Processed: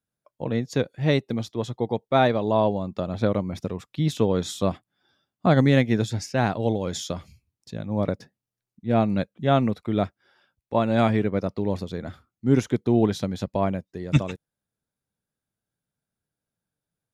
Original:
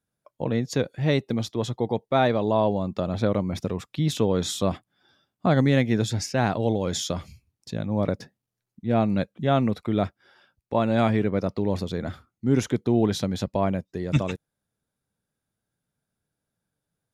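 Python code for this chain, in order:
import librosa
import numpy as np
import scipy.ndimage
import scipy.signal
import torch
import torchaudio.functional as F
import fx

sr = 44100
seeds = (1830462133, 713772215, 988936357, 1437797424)

y = fx.upward_expand(x, sr, threshold_db=-32.0, expansion=1.5)
y = y * librosa.db_to_amplitude(3.0)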